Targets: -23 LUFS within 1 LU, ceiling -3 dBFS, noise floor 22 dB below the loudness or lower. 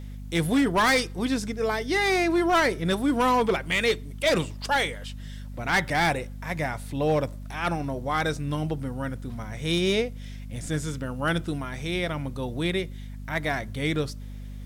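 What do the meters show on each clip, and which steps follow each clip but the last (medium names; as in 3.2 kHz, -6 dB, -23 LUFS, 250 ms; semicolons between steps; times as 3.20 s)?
clipped samples 1.2%; clipping level -17.0 dBFS; hum 50 Hz; highest harmonic 250 Hz; hum level -35 dBFS; loudness -26.0 LUFS; peak level -17.0 dBFS; loudness target -23.0 LUFS
-> clip repair -17 dBFS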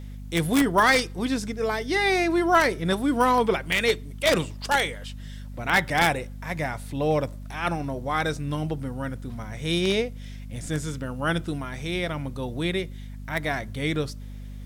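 clipped samples 0.0%; hum 50 Hz; highest harmonic 250 Hz; hum level -35 dBFS
-> hum notches 50/100/150/200/250 Hz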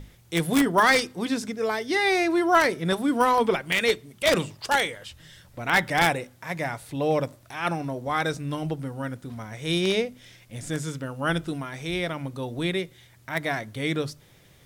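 hum not found; loudness -25.5 LUFS; peak level -7.0 dBFS; loudness target -23.0 LUFS
-> trim +2.5 dB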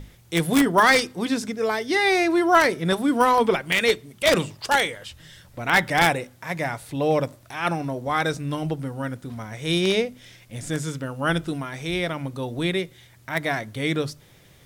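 loudness -23.0 LUFS; peak level -5.0 dBFS; noise floor -53 dBFS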